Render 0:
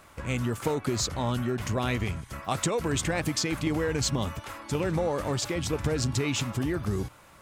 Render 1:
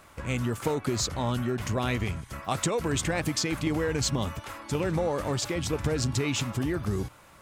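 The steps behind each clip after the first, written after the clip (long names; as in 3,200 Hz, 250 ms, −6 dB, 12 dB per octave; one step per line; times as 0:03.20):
no processing that can be heard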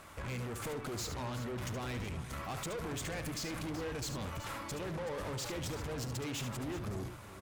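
downward compressor 3 to 1, threshold −30 dBFS, peak gain reduction 6.5 dB
tube saturation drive 39 dB, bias 0.4
multi-tap delay 72/376 ms −9/−13.5 dB
level +1.5 dB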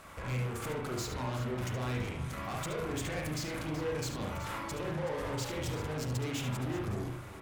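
convolution reverb, pre-delay 39 ms, DRR 0 dB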